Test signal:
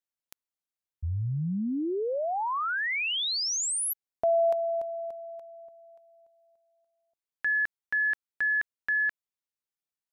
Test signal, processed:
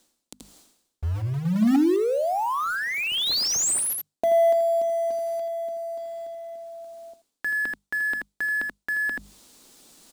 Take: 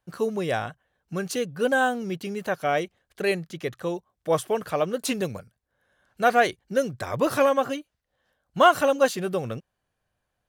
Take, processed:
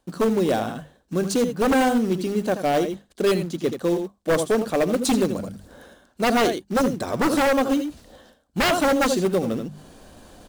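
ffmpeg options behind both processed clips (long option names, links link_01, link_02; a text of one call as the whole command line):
ffmpeg -i in.wav -af "equalizer=frequency=125:width_type=o:width=1:gain=-9,equalizer=frequency=250:width_type=o:width=1:gain=10,equalizer=frequency=2000:width_type=o:width=1:gain=-4,equalizer=frequency=4000:width_type=o:width=1:gain=7,equalizer=frequency=8000:width_type=o:width=1:gain=9,acrusher=bits=3:mode=log:mix=0:aa=0.000001,tiltshelf=frequency=1200:gain=5,bandreject=frequency=50:width_type=h:width=6,bandreject=frequency=100:width_type=h:width=6,bandreject=frequency=150:width_type=h:width=6,bandreject=frequency=200:width_type=h:width=6,bandreject=frequency=250:width_type=h:width=6,aecho=1:1:76|82:0.106|0.282,areverse,acompressor=mode=upward:threshold=-19dB:ratio=2.5:attack=0.24:release=261:knee=2.83:detection=peak,areverse,aeval=exprs='0.211*(abs(mod(val(0)/0.211+3,4)-2)-1)':channel_layout=same" out.wav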